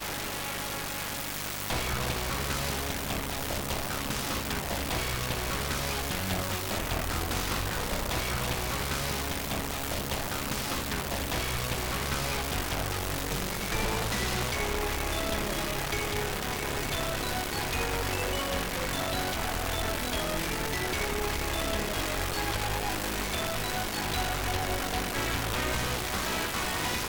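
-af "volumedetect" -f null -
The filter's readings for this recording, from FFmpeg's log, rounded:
mean_volume: -31.1 dB
max_volume: -16.2 dB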